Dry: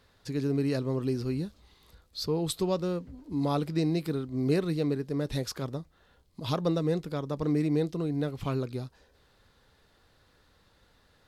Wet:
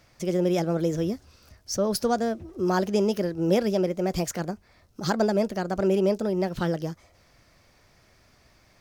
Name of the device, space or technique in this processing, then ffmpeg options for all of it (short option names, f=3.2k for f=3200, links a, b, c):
nightcore: -af "asetrate=56448,aresample=44100,volume=4.5dB"